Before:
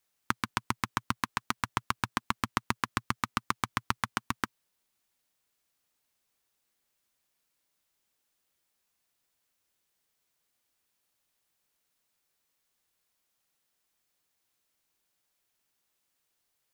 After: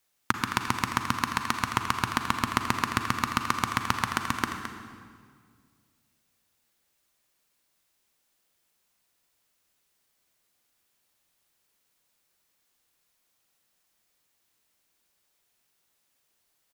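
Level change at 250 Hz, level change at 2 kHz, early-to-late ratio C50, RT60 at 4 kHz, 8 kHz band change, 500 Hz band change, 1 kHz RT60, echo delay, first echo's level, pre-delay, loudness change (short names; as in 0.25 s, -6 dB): +5.5 dB, +5.0 dB, 5.0 dB, 1.5 s, +5.0 dB, +5.5 dB, 1.9 s, 0.216 s, -10.0 dB, 36 ms, +5.0 dB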